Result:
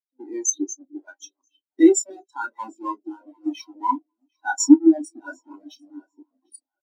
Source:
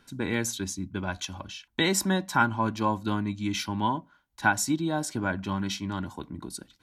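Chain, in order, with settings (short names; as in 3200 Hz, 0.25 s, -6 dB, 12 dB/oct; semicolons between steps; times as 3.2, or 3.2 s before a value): half-waves squared off; on a send: early reflections 31 ms -6 dB, 46 ms -17 dB; on the sum: harmonic-percussive split percussive +6 dB; high shelf 4000 Hz +11 dB; limiter -3 dBFS, peak gain reduction 10.5 dB; Chebyshev high-pass 270 Hz, order 4; split-band echo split 540 Hz, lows 0.302 s, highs 0.749 s, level -9 dB; spectral expander 4:1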